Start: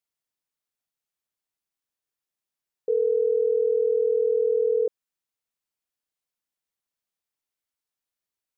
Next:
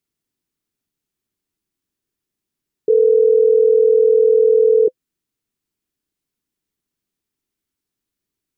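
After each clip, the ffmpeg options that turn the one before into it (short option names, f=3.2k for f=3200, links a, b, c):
-af "lowshelf=f=470:t=q:w=1.5:g=10,bandreject=f=510:w=12,volume=5dB"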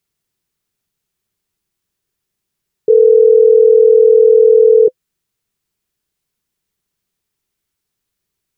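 -af "equalizer=f=280:w=3:g=-12.5,volume=6.5dB"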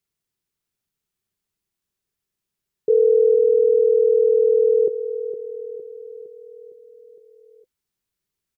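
-af "aecho=1:1:460|920|1380|1840|2300|2760:0.316|0.174|0.0957|0.0526|0.0289|0.0159,volume=-7.5dB"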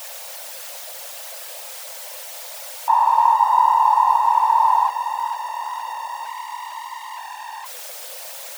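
-af "aeval=exprs='val(0)+0.5*0.0447*sgn(val(0))':c=same,afftfilt=real='hypot(re,im)*cos(2*PI*random(0))':imag='hypot(re,im)*sin(2*PI*random(1))':win_size=512:overlap=0.75,afreqshift=480,volume=5dB"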